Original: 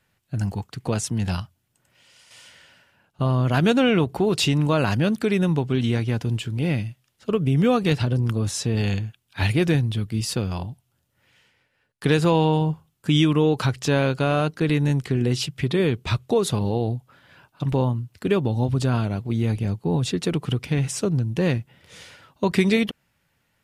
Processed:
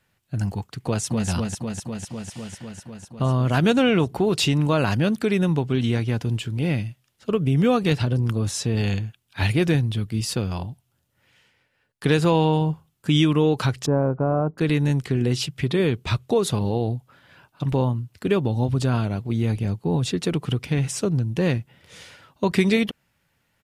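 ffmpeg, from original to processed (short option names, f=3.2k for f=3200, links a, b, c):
-filter_complex "[0:a]asplit=2[a][b];[b]afade=t=in:st=0.85:d=0.01,afade=t=out:st=1.29:d=0.01,aecho=0:1:250|500|750|1000|1250|1500|1750|2000|2250|2500|2750|3000:0.595662|0.47653|0.381224|0.304979|0.243983|0.195187|0.156149|0.124919|0.0999355|0.0799484|0.0639587|0.051167[c];[a][c]amix=inputs=2:normalize=0,asettb=1/sr,asplit=3[d][e][f];[d]atrim=end=13.864[g];[e]atrim=start=13.86:end=14.58,asetpts=PTS-STARTPTS,afade=t=in:d=0.004:c=qsin,afade=t=out:st=0.716:d=0.004:c=qsin,lowpass=f=1.1k:w=0.5412,lowpass=f=1.1k:w=1.3066[h];[f]atrim=start=14.576[i];[g][h]acrossfade=d=0.004:c1=hsin:c2=qsin[j];[j][i]acrossfade=d=0.004:c1=qsin:c2=hsin"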